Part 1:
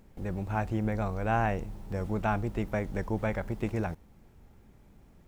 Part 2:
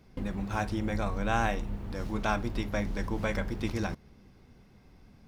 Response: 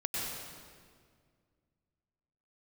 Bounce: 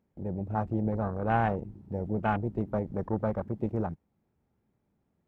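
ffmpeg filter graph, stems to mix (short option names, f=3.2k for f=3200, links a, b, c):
-filter_complex "[0:a]highpass=96,volume=1.5dB[a];[1:a]aeval=exprs='0.224*(cos(1*acos(clip(val(0)/0.224,-1,1)))-cos(1*PI/2))+0.0398*(cos(5*acos(clip(val(0)/0.224,-1,1)))-cos(5*PI/2))+0.0708*(cos(7*acos(clip(val(0)/0.224,-1,1)))-cos(7*PI/2))':c=same,volume=-1,volume=-8.5dB[b];[a][b]amix=inputs=2:normalize=0,afwtdn=0.0224,highshelf=f=2.7k:g=-9.5"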